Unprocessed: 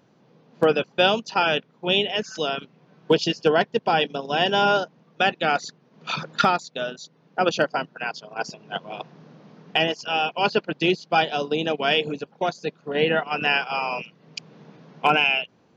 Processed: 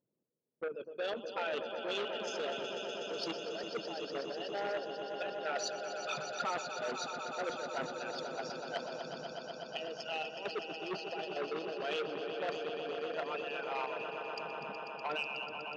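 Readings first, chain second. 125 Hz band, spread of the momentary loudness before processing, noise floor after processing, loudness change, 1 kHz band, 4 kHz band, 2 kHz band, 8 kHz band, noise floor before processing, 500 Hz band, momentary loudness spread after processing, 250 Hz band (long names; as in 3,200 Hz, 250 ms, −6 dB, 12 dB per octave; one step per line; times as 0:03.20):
−21.5 dB, 13 LU, −49 dBFS, −15.5 dB, −16.0 dB, −16.5 dB, −16.5 dB, can't be measured, −60 dBFS, −13.0 dB, 5 LU, −17.0 dB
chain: spectral envelope exaggerated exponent 2
noise gate −46 dBFS, range −26 dB
notch filter 750 Hz, Q 12
reversed playback
downward compressor 5 to 1, threshold −33 dBFS, peak gain reduction 17.5 dB
reversed playback
square-wave tremolo 2.2 Hz, depth 60%, duty 50%
on a send: echo that builds up and dies away 123 ms, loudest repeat 5, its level −10 dB
on the sum: saturating transformer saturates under 1,600 Hz
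level −1 dB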